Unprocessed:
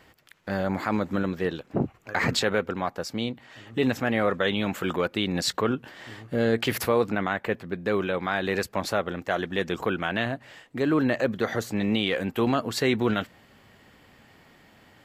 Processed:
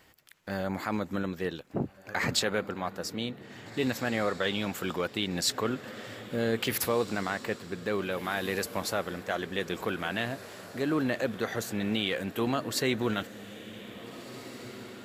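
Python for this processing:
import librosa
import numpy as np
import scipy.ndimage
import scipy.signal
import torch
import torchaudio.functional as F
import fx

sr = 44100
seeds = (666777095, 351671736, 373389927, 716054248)

y = fx.high_shelf(x, sr, hz=4900.0, db=9.5)
y = fx.echo_diffused(y, sr, ms=1768, feedback_pct=46, wet_db=-14.0)
y = F.gain(torch.from_numpy(y), -5.5).numpy()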